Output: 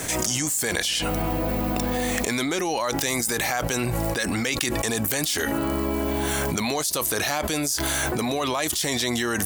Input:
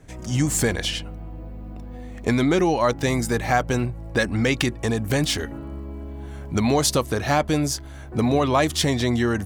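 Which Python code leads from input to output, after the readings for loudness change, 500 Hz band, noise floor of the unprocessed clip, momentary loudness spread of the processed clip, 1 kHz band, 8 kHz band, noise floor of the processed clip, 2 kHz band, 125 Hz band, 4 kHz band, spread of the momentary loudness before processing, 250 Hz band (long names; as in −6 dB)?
−1.5 dB, −3.5 dB, −37 dBFS, 2 LU, −2.5 dB, +4.5 dB, −28 dBFS, +1.0 dB, −6.0 dB, +1.5 dB, 17 LU, −3.5 dB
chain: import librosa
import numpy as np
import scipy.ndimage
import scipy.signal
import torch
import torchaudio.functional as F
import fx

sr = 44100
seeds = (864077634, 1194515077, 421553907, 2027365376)

y = fx.riaa(x, sr, side='recording')
y = fx.env_flatten(y, sr, amount_pct=100)
y = y * librosa.db_to_amplitude(-16.5)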